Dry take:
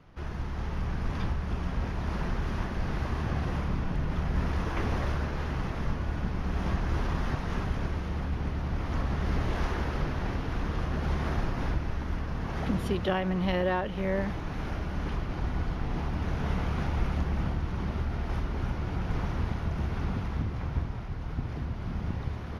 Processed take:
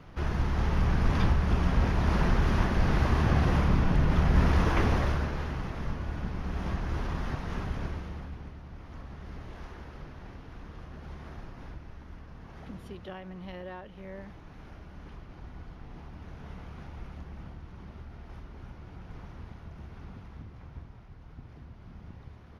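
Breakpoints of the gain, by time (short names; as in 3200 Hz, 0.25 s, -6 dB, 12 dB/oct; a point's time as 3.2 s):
4.69 s +6 dB
5.61 s -3 dB
7.87 s -3 dB
8.62 s -14 dB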